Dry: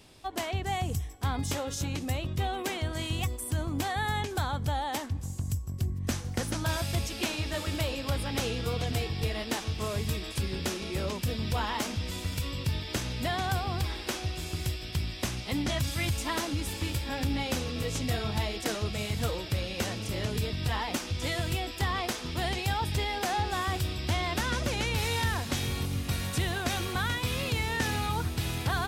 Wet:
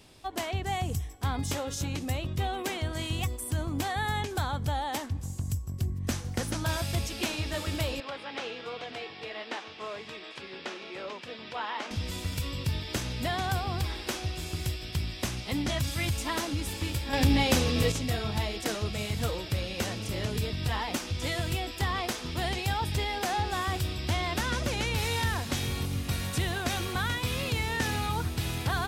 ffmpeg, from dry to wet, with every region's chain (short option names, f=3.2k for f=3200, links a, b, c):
-filter_complex "[0:a]asettb=1/sr,asplit=3[a][b][c];[a]atrim=end=8.004[d];[b]atrim=start=8:end=11.91,asetpts=PTS-STARTPTS,afade=t=in:d=0.004:c=qsin,afade=t=out:st=3.906:d=0.004:c=qsin,highpass=270,lowpass=3.1k,lowshelf=f=370:g=-10.5[e];[c]atrim=start=11.906[f];[d][e]acrossfade=d=0.004:c1=hsin:c2=qsin[g];[g][f]acrossfade=d=0.004:c1=qsin:c2=hsin,asettb=1/sr,asplit=3[h][i][j];[h]atrim=end=17.134[k];[i]atrim=start=17.13:end=17.92,asetpts=PTS-STARTPTS,afade=t=in:d=0.004:c=qsin,afade=t=out:st=0.786:d=0.004:c=qsin,bandreject=f=1.4k:w=26,acontrast=78[l];[j]atrim=start=17.916[m];[k][l]acrossfade=d=0.004:c1=hsin:c2=qsin[n];[n][m]acrossfade=d=0.004:c1=qsin:c2=hsin"